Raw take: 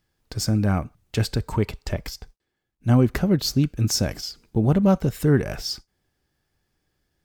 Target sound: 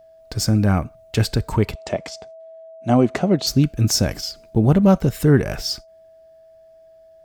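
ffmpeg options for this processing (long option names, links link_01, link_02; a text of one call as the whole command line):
ffmpeg -i in.wav -filter_complex "[0:a]aeval=exprs='val(0)+0.00316*sin(2*PI*650*n/s)':channel_layout=same,asettb=1/sr,asplit=3[link_01][link_02][link_03];[link_01]atrim=end=1.754[link_04];[link_02]atrim=start=1.75:end=3.47,asetpts=PTS-STARTPTS,afade=type=in:duration=0.004:curve=qsin,afade=type=out:start_time=1.716:duration=0.004:curve=qsin,highpass=190,equalizer=frequency=680:width_type=q:width=4:gain=9,equalizer=frequency=1600:width_type=q:width=4:gain=-5,equalizer=frequency=5000:width_type=q:width=4:gain=-5,lowpass=frequency=8200:width=0.5412,lowpass=frequency=8200:width=1.3066[link_05];[link_03]atrim=start=3.466[link_06];[link_04][link_05]acrossfade=duration=0.004:curve1=hsin:curve2=qsin[link_07];[link_07][link_06]acrossfade=duration=0.004:curve1=qsin:curve2=hsin,volume=4dB" out.wav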